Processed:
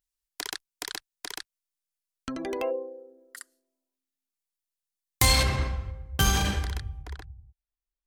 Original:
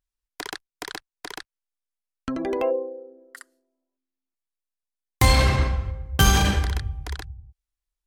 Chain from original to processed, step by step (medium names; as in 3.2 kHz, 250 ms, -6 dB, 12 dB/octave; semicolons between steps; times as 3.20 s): treble shelf 2.7 kHz +11.5 dB, from 5.43 s +3 dB, from 7.02 s -7.5 dB; trim -6.5 dB